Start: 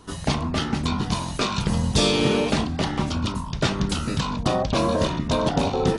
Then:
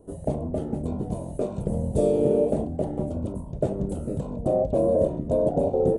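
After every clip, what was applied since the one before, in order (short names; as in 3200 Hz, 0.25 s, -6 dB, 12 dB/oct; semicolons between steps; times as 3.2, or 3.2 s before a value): EQ curve 240 Hz 0 dB, 590 Hz +10 dB, 1100 Hz -19 dB, 5300 Hz -29 dB, 8500 Hz -6 dB; gain -4.5 dB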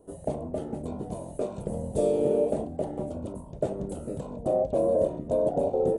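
low shelf 290 Hz -9.5 dB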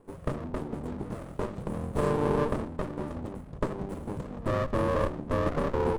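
running maximum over 33 samples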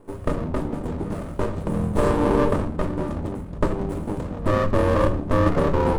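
reverb RT60 0.50 s, pre-delay 3 ms, DRR 7 dB; gain +6.5 dB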